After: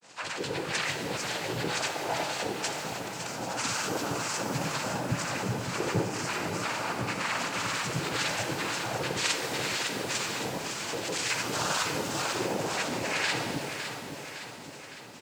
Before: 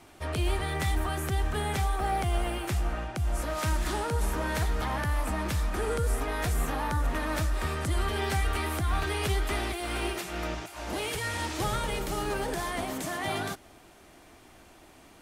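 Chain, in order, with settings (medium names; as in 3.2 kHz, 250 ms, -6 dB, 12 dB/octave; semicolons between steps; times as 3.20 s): treble shelf 2.5 kHz +11 dB; band-stop 2.8 kHz, Q 5.8; in parallel at -2.5 dB: peak limiter -27 dBFS, peak gain reduction 13.5 dB; on the sum: harmonic tremolo 2 Hz, depth 100%, crossover 820 Hz; granulator; noise-vocoded speech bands 8; feedback delay 559 ms, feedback 57%, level -8.5 dB; pitch-shifted reverb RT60 1.9 s, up +12 st, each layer -8 dB, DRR 5.5 dB; trim +1.5 dB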